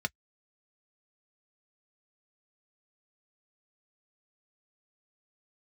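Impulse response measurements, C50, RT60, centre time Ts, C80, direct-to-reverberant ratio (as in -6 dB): 51.0 dB, no single decay rate, 3 ms, 60.0 dB, 6.0 dB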